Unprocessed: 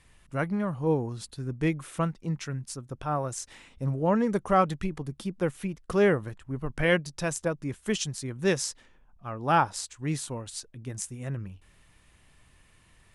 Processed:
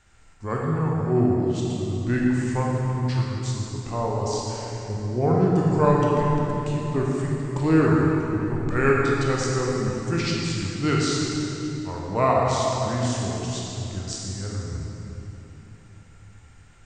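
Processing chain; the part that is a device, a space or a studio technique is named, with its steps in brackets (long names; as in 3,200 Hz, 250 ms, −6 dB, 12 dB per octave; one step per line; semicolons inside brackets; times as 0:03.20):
slowed and reverbed (speed change −22%; convolution reverb RT60 3.5 s, pre-delay 20 ms, DRR −3.5 dB)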